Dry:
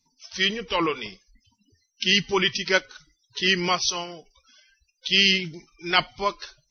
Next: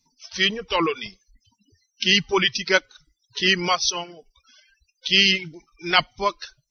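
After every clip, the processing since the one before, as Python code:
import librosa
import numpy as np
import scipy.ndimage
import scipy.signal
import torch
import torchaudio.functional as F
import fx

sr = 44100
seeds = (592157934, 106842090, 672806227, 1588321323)

y = fx.dereverb_blind(x, sr, rt60_s=0.76)
y = y * 10.0 ** (2.5 / 20.0)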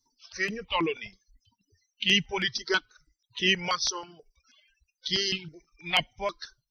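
y = fx.phaser_held(x, sr, hz=6.2, low_hz=670.0, high_hz=4500.0)
y = y * 10.0 ** (-3.5 / 20.0)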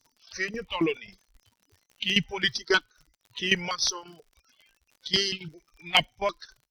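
y = fx.dmg_crackle(x, sr, seeds[0], per_s=78.0, level_db=-47.0)
y = fx.cheby_harmonics(y, sr, harmonics=(8,), levels_db=(-38,), full_scale_db=-9.5)
y = fx.tremolo_shape(y, sr, shape='saw_down', hz=3.7, depth_pct=80)
y = y * 10.0 ** (4.5 / 20.0)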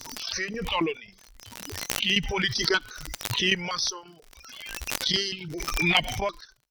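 y = fx.pre_swell(x, sr, db_per_s=35.0)
y = y * 10.0 ** (-2.0 / 20.0)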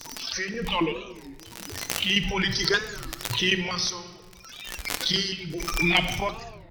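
y = fx.room_shoebox(x, sr, seeds[1], volume_m3=1400.0, walls='mixed', distance_m=0.74)
y = fx.record_warp(y, sr, rpm=33.33, depth_cents=250.0)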